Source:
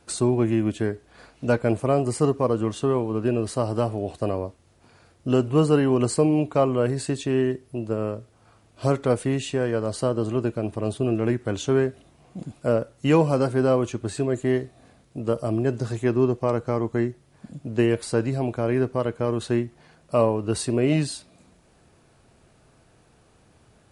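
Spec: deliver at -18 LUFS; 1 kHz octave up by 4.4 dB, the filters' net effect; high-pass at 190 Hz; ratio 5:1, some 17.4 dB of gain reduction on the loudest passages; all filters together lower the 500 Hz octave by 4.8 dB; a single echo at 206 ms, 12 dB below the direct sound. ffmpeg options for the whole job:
-af "highpass=190,equalizer=f=500:t=o:g=-8,equalizer=f=1000:t=o:g=8,acompressor=threshold=0.0141:ratio=5,aecho=1:1:206:0.251,volume=13.3"

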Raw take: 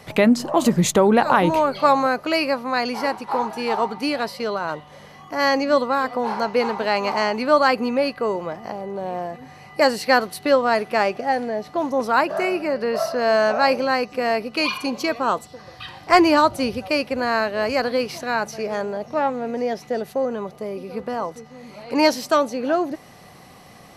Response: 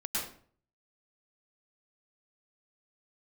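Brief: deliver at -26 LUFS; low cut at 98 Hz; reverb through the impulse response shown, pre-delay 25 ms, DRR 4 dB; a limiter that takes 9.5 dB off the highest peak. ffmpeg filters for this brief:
-filter_complex "[0:a]highpass=98,alimiter=limit=0.266:level=0:latency=1,asplit=2[s0][s1];[1:a]atrim=start_sample=2205,adelay=25[s2];[s1][s2]afir=irnorm=-1:irlink=0,volume=0.355[s3];[s0][s3]amix=inputs=2:normalize=0,volume=0.631"

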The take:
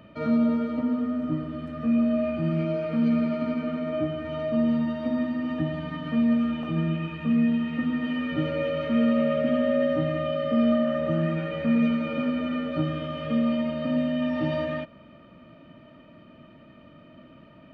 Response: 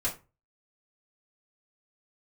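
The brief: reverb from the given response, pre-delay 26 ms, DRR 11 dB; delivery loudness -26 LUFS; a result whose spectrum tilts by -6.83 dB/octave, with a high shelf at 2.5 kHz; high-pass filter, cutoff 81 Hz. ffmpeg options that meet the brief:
-filter_complex "[0:a]highpass=81,highshelf=f=2500:g=-9,asplit=2[s0][s1];[1:a]atrim=start_sample=2205,adelay=26[s2];[s1][s2]afir=irnorm=-1:irlink=0,volume=0.141[s3];[s0][s3]amix=inputs=2:normalize=0"

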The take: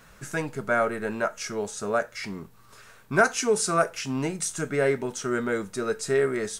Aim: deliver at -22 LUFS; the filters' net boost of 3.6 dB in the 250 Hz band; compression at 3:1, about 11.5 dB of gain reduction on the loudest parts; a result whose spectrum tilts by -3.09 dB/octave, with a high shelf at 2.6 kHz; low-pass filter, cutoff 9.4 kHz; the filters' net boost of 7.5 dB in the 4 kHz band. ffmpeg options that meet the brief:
-af "lowpass=9400,equalizer=f=250:t=o:g=4.5,highshelf=f=2600:g=7.5,equalizer=f=4000:t=o:g=3,acompressor=threshold=0.0355:ratio=3,volume=2.82"

